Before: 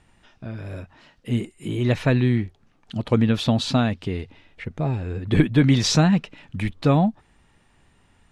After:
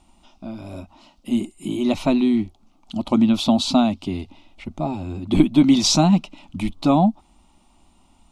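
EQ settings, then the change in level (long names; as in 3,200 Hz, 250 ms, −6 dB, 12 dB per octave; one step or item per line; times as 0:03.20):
phaser with its sweep stopped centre 460 Hz, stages 6
+5.5 dB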